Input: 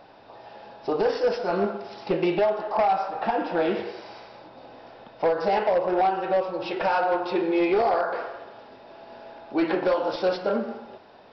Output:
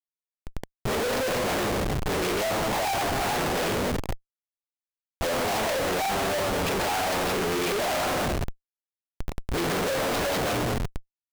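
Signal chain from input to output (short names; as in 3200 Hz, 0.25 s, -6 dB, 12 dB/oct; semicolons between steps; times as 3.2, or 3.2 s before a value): added harmonics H 2 -10 dB, 5 -36 dB, 8 -11 dB, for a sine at -15.5 dBFS; formant-preserving pitch shift -11.5 st; Schmitt trigger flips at -35 dBFS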